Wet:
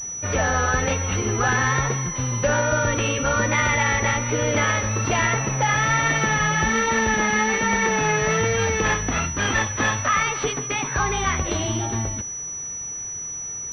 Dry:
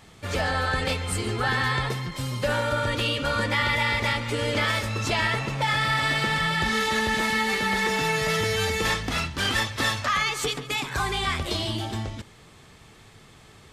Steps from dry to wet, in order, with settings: vibrato 1.2 Hz 57 cents; class-D stage that switches slowly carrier 5.9 kHz; trim +4.5 dB

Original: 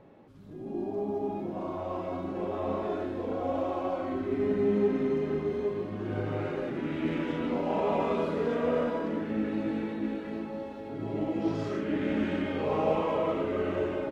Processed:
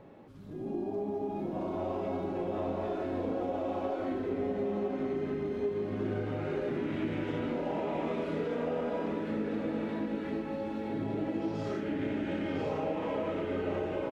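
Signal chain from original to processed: dynamic bell 1.1 kHz, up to -7 dB, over -54 dBFS, Q 7.6; compression, threshold -33 dBFS, peak gain reduction 11.5 dB; on a send: delay 1006 ms -5.5 dB; on the sum: trim +2 dB

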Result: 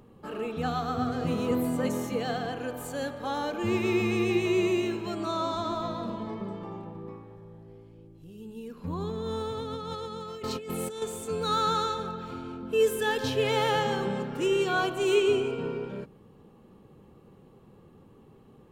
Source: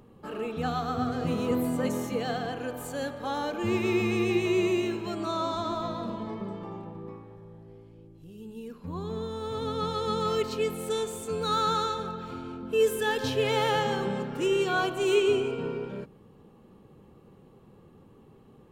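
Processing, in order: 8.77–11.02 s: compressor with a negative ratio -35 dBFS, ratio -1

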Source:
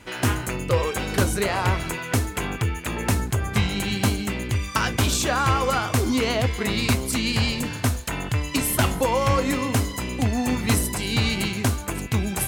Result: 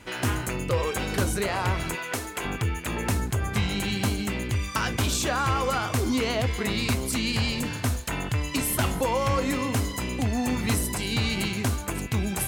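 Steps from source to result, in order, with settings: in parallel at +2 dB: peak limiter -18.5 dBFS, peak gain reduction 10 dB; 1.95–2.45 s: on the sum: tone controls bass -13 dB, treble 0 dB; trim -8 dB

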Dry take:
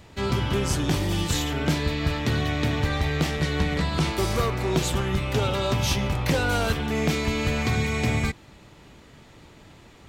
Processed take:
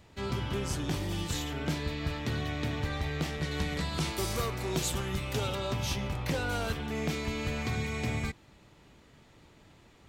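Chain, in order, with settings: 3.51–5.55 s: treble shelf 4.6 kHz +9 dB; trim -8.5 dB

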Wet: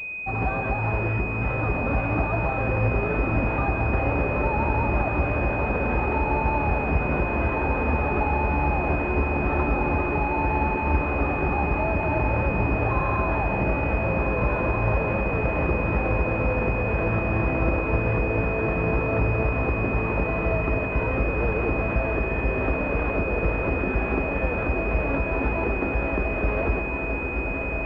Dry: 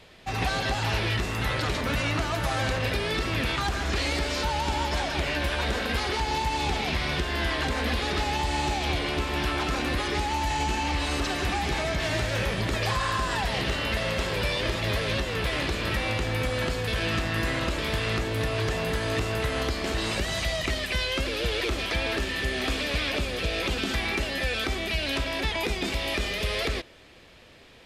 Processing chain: echo that smears into a reverb 1539 ms, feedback 63%, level -3.5 dB; class-D stage that switches slowly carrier 2.5 kHz; trim +3 dB

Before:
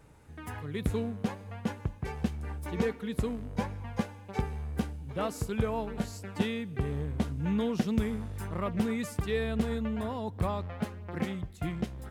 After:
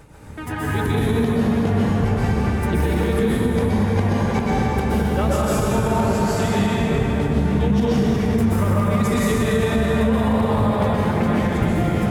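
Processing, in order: reverb removal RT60 0.92 s; compression, threshold -33 dBFS, peak gain reduction 11 dB; tremolo 7.3 Hz, depth 42%; plate-style reverb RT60 4.7 s, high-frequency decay 0.55×, pre-delay 110 ms, DRR -9 dB; loudness maximiser +22 dB; trim -9 dB

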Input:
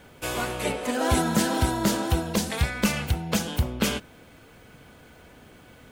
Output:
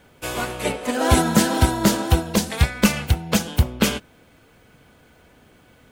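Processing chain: upward expansion 1.5:1, over -38 dBFS; trim +7.5 dB

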